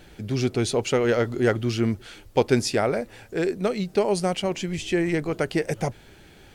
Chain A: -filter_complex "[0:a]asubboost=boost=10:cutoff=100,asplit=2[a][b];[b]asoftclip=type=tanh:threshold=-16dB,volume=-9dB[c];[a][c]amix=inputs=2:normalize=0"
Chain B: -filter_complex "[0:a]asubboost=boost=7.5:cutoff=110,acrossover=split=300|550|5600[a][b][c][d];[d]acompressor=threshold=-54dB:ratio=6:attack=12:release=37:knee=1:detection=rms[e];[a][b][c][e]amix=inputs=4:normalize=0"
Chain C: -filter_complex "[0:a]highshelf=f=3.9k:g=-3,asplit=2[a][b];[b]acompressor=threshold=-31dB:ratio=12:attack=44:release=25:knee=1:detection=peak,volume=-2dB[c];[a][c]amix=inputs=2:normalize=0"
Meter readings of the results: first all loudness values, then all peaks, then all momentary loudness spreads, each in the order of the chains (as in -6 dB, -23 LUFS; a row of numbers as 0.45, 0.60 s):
-22.5, -25.0, -22.0 LUFS; -5.5, -6.5, -4.5 dBFS; 8, 8, 6 LU